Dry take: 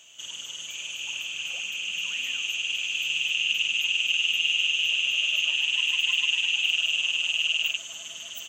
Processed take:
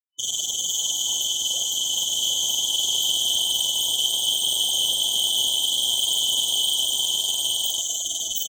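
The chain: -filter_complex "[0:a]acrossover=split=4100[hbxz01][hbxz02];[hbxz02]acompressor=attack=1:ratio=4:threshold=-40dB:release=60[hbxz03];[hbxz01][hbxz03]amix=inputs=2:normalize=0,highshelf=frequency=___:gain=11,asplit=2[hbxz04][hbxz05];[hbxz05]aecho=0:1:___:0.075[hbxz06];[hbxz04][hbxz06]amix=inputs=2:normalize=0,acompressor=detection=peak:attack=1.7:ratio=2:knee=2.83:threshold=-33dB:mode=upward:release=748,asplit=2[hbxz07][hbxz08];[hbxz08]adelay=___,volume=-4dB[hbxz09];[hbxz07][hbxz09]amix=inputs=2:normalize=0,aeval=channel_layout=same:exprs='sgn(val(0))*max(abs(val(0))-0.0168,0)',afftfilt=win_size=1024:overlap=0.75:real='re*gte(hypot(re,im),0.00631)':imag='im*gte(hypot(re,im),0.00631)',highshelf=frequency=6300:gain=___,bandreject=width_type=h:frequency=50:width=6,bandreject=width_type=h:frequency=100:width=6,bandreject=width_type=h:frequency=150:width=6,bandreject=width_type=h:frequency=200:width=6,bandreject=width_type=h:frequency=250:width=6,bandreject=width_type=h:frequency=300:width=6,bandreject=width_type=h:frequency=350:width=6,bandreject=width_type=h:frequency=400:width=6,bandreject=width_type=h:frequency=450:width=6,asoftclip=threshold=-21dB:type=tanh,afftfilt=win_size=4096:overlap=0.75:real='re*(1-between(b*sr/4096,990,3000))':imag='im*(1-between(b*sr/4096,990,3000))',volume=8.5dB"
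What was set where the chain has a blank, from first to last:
2600, 273, 41, 5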